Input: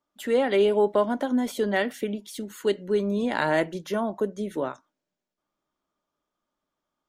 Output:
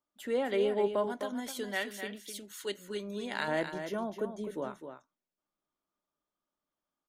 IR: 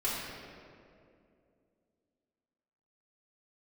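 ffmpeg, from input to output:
-filter_complex "[0:a]asettb=1/sr,asplit=3[link_01][link_02][link_03];[link_01]atrim=end=1.074[link_04];[link_02]atrim=start=1.07:end=3.48,asetpts=PTS-STARTPTS,afade=type=in:duration=0.004:curve=qsin,afade=type=out:start_time=2.406:duration=0.004:curve=qsin,tiltshelf=frequency=1300:gain=-6.5[link_05];[link_03]atrim=start=3.476[link_06];[link_04][link_05]acrossfade=duration=0.004:curve1=hsin:curve2=qsin[link_07];[link_07][link_06]acrossfade=duration=0.004:curve1=qsin:curve2=hsin,aecho=1:1:256:0.376,volume=-8.5dB"

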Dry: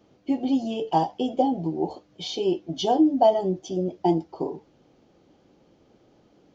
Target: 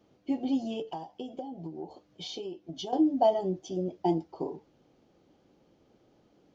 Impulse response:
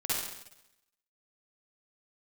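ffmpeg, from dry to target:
-filter_complex "[0:a]asettb=1/sr,asplit=3[link_01][link_02][link_03];[link_01]atrim=end=0.814[link_04];[link_02]atrim=start=0.81:end=2.93,asetpts=PTS-STARTPTS,afade=type=in:duration=0.004:curve=qsin,afade=type=out:start_time=2.116:duration=0.004:curve=qsin,acompressor=threshold=-30dB:ratio=12[link_05];[link_03]atrim=start=2.926[link_06];[link_04][link_05]acrossfade=duration=0.004:curve1=hsin:curve2=qsin[link_07];[link_07][link_06]acrossfade=duration=0.004:curve1=qsin:curve2=hsin,volume=-5.5dB"

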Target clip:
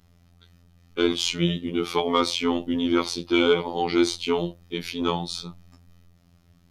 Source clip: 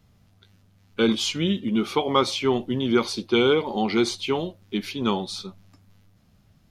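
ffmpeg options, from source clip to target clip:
ffmpeg -i in.wav -af "acontrast=36,afftfilt=real='hypot(re,im)*cos(PI*b)':imag='0':win_size=2048:overlap=0.75,volume=-1.5dB" out.wav

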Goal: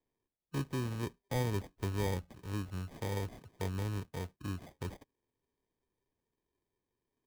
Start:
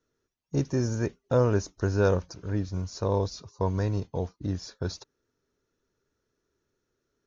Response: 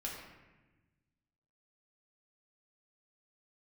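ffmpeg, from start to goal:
-filter_complex "[0:a]acrusher=samples=32:mix=1:aa=0.000001,acrossover=split=320[link_01][link_02];[link_02]acompressor=threshold=-36dB:ratio=1.5[link_03];[link_01][link_03]amix=inputs=2:normalize=0,volume=-8.5dB"

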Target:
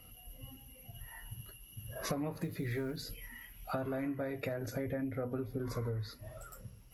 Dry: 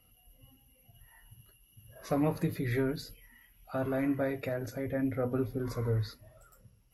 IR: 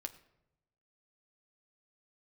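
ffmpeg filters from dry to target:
-filter_complex "[0:a]acompressor=threshold=-43dB:ratio=12,asettb=1/sr,asplit=3[link_01][link_02][link_03];[link_01]atrim=end=2.334[link_04];[link_02]atrim=start=2.33:end=3.73,asetpts=PTS-STARTPTS,afade=type=in:duration=0.004:curve=qsin,afade=type=out:start_time=1.396:duration=0.004:curve=qsin,acrusher=bits=8:mode=log:mix=0:aa=0.000001[link_05];[link_03]atrim=start=3.726[link_06];[link_04][link_05]acrossfade=duration=0.004:curve1=hsin:curve2=qsin[link_07];[link_07][link_06]acrossfade=duration=0.004:curve1=qsin:curve2=hsin,volume=9dB"

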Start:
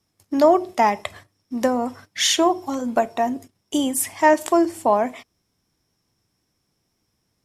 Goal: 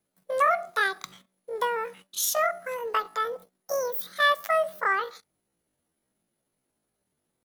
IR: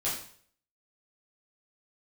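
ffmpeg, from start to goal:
-af "asetrate=83250,aresample=44100,atempo=0.529732,volume=-7dB"

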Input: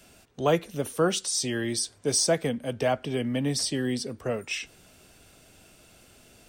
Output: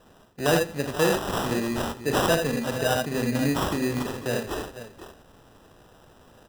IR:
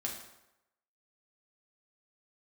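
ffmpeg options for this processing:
-filter_complex "[0:a]aecho=1:1:42|73|81|476|502:0.422|0.282|0.501|0.126|0.237,asplit=2[link_01][link_02];[1:a]atrim=start_sample=2205,adelay=85[link_03];[link_02][link_03]afir=irnorm=-1:irlink=0,volume=-21.5dB[link_04];[link_01][link_04]amix=inputs=2:normalize=0,acrusher=samples=20:mix=1:aa=0.000001"

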